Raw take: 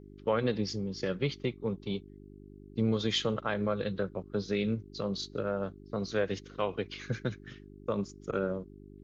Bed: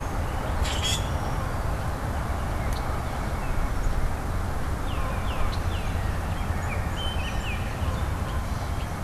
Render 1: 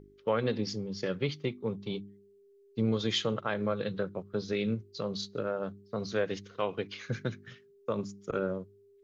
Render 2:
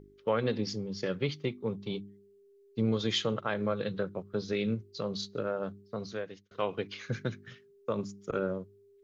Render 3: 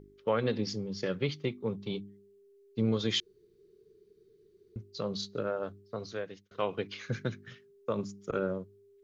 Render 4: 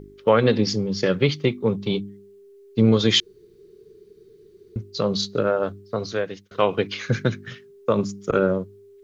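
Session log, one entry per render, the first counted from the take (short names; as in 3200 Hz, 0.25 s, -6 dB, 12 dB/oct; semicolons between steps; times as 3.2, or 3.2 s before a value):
de-hum 50 Hz, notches 7
5.79–6.51 fade out
3.2–4.76 room tone; 5.5–6.19 bell 190 Hz -8.5 dB 0.33 oct
gain +12 dB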